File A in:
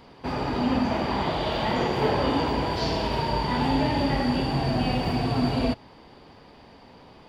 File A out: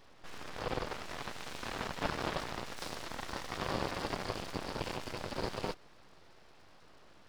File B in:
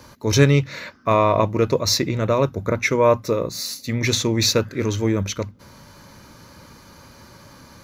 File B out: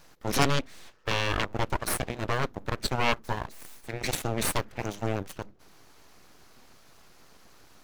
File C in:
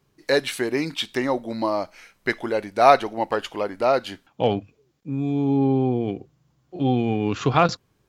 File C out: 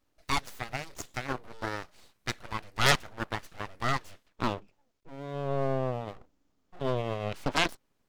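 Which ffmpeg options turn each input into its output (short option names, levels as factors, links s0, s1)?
-af "aeval=exprs='abs(val(0))':c=same,aeval=exprs='0.891*(cos(1*acos(clip(val(0)/0.891,-1,1)))-cos(1*PI/2))+0.316*(cos(8*acos(clip(val(0)/0.891,-1,1)))-cos(8*PI/2))':c=same,volume=0.447"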